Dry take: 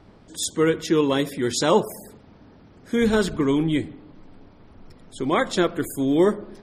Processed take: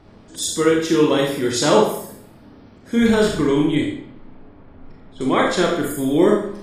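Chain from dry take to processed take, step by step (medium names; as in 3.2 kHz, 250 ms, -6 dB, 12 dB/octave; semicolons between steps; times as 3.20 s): Schroeder reverb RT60 0.6 s, combs from 27 ms, DRR -1 dB; 3.75–5.21 s: level-controlled noise filter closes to 2 kHz, open at -18 dBFS; trim +1 dB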